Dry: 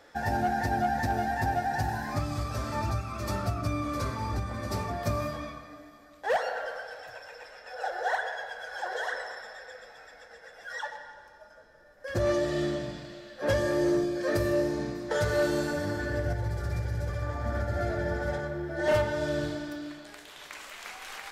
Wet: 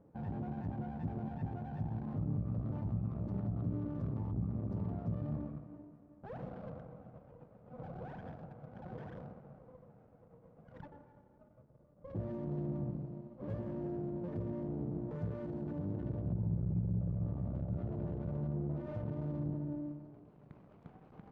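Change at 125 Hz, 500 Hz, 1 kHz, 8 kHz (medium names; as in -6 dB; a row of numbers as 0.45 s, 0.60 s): -3.0 dB, -16.0 dB, -20.5 dB, under -35 dB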